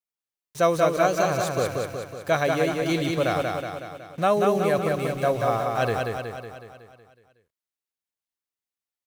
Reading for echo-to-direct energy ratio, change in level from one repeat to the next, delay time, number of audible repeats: -2.0 dB, -5.0 dB, 185 ms, 7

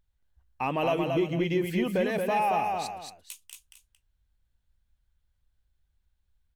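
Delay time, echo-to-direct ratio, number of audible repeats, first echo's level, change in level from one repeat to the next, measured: 226 ms, -3.5 dB, 2, -4.0 dB, -10.5 dB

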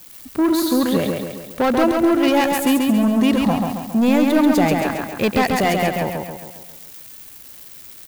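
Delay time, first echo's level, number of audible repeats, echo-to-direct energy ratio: 136 ms, -3.5 dB, 6, -2.0 dB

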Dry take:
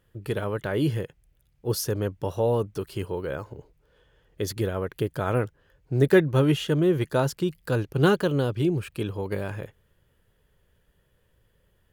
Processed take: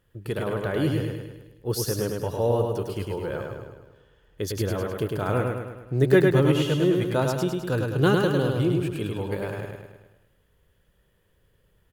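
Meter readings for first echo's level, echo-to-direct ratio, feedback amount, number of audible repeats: -3.5 dB, -2.0 dB, 54%, 6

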